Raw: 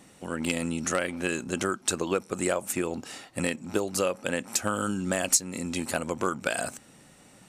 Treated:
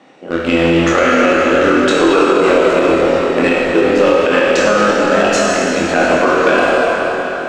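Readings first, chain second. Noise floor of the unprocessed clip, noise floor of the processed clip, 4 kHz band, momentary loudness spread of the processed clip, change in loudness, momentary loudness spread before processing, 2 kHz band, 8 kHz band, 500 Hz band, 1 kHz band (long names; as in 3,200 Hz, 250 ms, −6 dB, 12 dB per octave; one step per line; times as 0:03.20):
−55 dBFS, −21 dBFS, +14.5 dB, 4 LU, +17.0 dB, 7 LU, +18.5 dB, +2.0 dB, +20.0 dB, +19.5 dB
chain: high-pass filter 340 Hz 12 dB per octave
high-shelf EQ 5,400 Hz −7.5 dB
rotating-speaker cabinet horn 0.85 Hz, later 5 Hz, at 0:05.35
in parallel at −6 dB: bit reduction 5 bits
on the sum: high-frequency loss of the air 180 metres
on a send: flutter between parallel walls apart 4.1 metres, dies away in 0.25 s
on the sum: dense smooth reverb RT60 4.7 s, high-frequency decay 0.75×, DRR −5.5 dB
boost into a limiter +15 dB
level −1 dB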